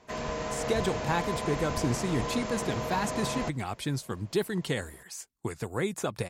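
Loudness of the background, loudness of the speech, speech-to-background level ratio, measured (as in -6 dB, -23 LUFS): -34.0 LUFS, -32.5 LUFS, 1.5 dB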